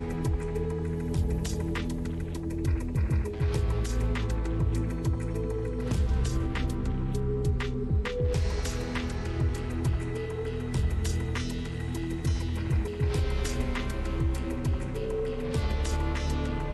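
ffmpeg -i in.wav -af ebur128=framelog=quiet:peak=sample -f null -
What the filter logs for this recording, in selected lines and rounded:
Integrated loudness:
  I:         -30.6 LUFS
  Threshold: -40.6 LUFS
Loudness range:
  LRA:         1.4 LU
  Threshold: -50.5 LUFS
  LRA low:   -31.2 LUFS
  LRA high:  -29.8 LUFS
Sample peak:
  Peak:      -17.5 dBFS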